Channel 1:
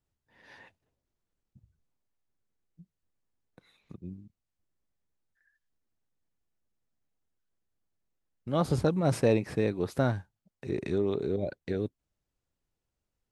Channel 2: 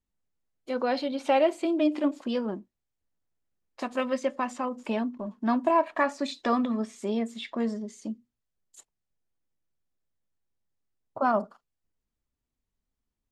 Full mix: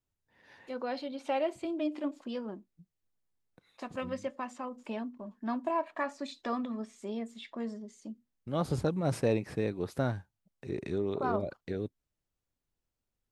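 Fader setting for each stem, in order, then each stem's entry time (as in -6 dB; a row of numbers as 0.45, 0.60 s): -4.0, -8.5 dB; 0.00, 0.00 s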